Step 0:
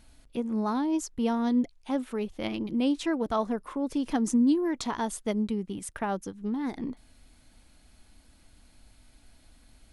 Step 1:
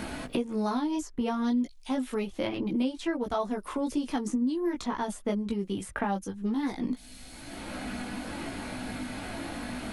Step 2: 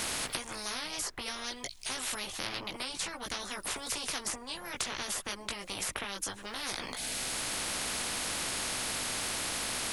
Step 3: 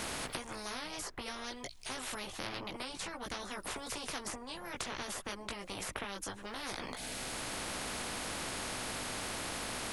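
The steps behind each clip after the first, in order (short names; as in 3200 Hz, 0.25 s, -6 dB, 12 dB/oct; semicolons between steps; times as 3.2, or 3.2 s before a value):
chorus voices 6, 0.26 Hz, delay 18 ms, depth 2.9 ms; three-band squash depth 100%; gain +2 dB
spectral compressor 10:1
high shelf 2000 Hz -8 dB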